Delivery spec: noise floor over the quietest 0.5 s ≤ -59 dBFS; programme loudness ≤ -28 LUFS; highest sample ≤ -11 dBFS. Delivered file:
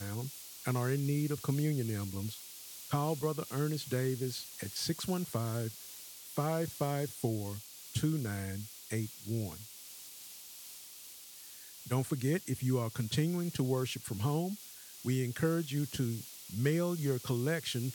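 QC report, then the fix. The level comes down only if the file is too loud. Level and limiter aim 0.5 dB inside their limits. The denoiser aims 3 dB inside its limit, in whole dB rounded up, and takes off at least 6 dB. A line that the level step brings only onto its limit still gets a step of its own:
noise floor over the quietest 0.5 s -51 dBFS: fail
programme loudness -35.0 LUFS: pass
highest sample -18.5 dBFS: pass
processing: noise reduction 11 dB, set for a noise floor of -51 dBFS

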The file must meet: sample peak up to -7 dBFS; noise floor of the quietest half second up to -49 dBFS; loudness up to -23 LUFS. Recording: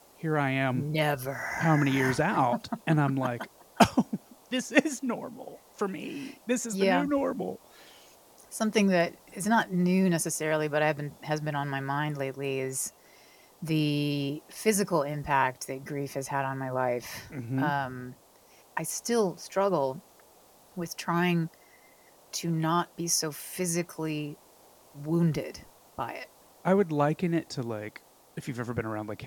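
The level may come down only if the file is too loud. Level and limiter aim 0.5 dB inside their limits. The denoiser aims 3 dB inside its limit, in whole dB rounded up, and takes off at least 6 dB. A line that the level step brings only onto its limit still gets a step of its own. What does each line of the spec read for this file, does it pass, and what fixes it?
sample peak -5.0 dBFS: fail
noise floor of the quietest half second -58 dBFS: pass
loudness -29.0 LUFS: pass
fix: peak limiter -7.5 dBFS

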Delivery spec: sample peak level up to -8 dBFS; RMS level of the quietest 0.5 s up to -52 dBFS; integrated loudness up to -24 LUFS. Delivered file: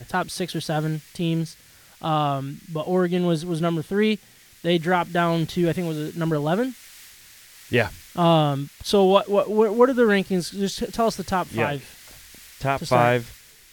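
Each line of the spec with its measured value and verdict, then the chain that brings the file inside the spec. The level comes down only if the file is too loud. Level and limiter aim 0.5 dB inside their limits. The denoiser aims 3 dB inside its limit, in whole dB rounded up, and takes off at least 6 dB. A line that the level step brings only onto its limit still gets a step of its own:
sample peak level -3.0 dBFS: fail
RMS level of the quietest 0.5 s -50 dBFS: fail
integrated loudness -23.0 LUFS: fail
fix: noise reduction 6 dB, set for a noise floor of -50 dBFS; trim -1.5 dB; peak limiter -8.5 dBFS

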